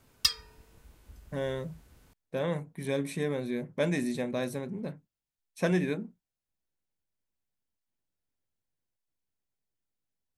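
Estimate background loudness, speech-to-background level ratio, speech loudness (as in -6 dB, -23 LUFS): -30.0 LUFS, -3.0 dB, -33.0 LUFS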